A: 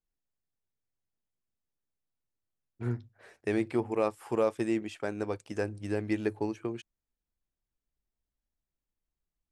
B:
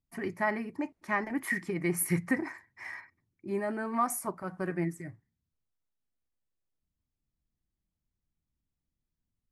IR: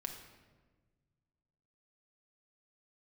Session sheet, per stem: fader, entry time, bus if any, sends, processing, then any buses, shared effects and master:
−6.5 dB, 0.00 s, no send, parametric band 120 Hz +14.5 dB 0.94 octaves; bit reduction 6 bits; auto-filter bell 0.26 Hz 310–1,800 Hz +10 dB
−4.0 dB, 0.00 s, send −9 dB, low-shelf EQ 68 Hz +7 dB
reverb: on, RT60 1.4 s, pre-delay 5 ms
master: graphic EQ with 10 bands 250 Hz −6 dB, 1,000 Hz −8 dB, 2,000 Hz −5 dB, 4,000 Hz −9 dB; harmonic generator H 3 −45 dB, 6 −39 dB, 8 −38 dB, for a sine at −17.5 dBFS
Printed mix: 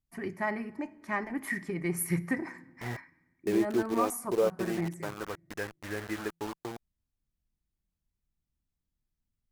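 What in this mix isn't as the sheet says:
stem A: missing parametric band 120 Hz +14.5 dB 0.94 octaves
master: missing graphic EQ with 10 bands 250 Hz −6 dB, 1,000 Hz −8 dB, 2,000 Hz −5 dB, 4,000 Hz −9 dB

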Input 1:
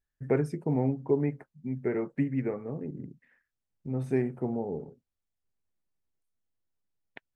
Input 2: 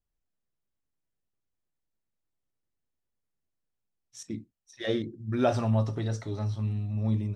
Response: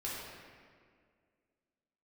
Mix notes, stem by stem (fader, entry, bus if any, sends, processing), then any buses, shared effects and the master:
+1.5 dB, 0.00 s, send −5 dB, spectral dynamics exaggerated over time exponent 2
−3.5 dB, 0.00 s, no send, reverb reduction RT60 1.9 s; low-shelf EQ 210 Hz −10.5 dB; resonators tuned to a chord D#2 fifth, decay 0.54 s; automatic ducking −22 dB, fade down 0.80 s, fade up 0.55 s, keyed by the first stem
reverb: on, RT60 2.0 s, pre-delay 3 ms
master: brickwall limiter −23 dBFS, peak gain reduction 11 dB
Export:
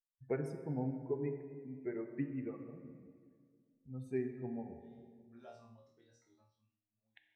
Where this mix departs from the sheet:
stem 1 +1.5 dB → −10.0 dB
stem 2 −3.5 dB → −14.5 dB

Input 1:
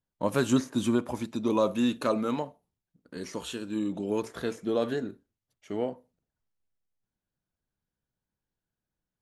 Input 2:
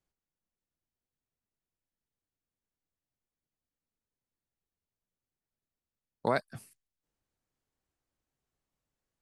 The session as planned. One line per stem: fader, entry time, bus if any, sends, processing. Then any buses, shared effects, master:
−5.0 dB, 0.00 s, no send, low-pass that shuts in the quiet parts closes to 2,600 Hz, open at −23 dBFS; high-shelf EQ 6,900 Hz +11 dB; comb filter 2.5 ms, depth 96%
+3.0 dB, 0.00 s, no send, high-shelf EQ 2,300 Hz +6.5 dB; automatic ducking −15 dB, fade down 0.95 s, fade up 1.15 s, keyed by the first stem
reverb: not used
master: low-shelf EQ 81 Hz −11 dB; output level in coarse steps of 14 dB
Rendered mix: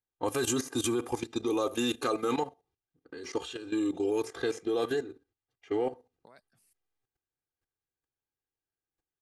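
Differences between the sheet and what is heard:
stem 1 −5.0 dB → +3.5 dB
stem 2 +3.0 dB → −6.0 dB

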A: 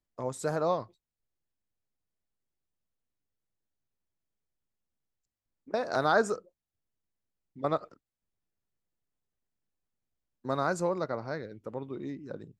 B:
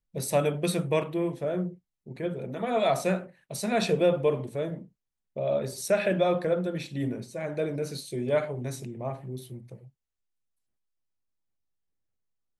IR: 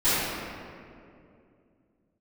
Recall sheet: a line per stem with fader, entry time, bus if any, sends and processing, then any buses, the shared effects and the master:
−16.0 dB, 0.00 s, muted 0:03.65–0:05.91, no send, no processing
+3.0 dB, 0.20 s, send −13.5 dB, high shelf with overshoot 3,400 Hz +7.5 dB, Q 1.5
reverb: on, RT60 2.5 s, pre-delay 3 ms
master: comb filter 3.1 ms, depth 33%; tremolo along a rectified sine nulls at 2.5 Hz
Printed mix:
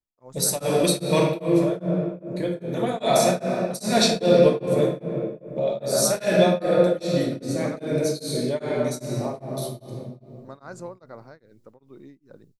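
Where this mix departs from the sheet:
stem A −16.0 dB → −6.0 dB
master: missing comb filter 3.1 ms, depth 33%

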